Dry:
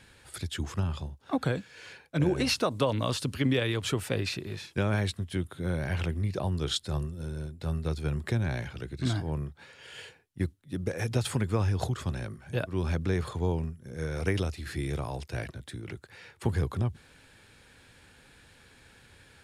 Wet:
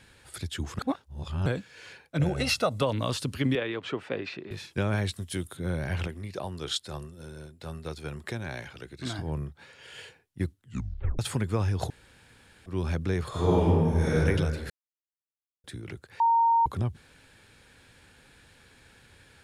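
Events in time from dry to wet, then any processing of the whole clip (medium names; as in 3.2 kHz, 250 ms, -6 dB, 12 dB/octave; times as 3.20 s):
0.79–1.46 s: reverse
2.19–2.82 s: comb 1.5 ms, depth 58%
3.55–4.51 s: band-pass 240–2600 Hz
5.12–5.57 s: tone controls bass -3 dB, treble +11 dB
6.07–9.19 s: bass shelf 230 Hz -11.5 dB
10.59 s: tape stop 0.60 s
11.90–12.66 s: room tone
13.29–14.14 s: reverb throw, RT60 2 s, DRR -10.5 dB
14.70–15.64 s: mute
16.20–16.66 s: bleep 923 Hz -18.5 dBFS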